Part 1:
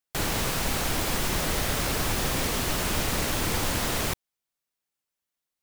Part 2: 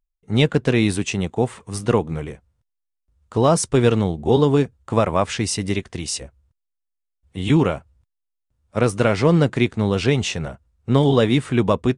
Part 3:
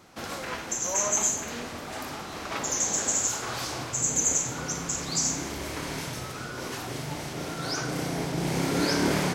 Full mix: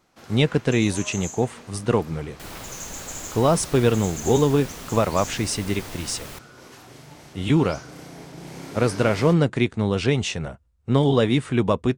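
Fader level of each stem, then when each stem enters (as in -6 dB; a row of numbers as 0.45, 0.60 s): -11.0, -2.5, -10.5 dB; 2.25, 0.00, 0.00 s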